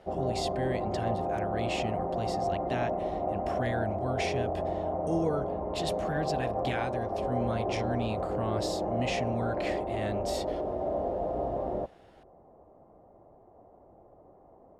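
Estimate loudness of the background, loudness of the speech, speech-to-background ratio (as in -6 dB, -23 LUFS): -32.5 LUFS, -36.5 LUFS, -4.0 dB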